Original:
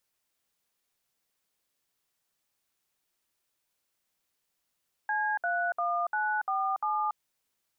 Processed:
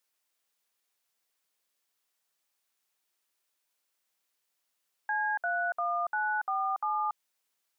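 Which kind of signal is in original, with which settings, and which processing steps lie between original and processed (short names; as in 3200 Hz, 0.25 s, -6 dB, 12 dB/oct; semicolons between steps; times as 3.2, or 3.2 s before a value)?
DTMF "C31947", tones 0.284 s, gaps 63 ms, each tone -29 dBFS
HPF 480 Hz 6 dB/oct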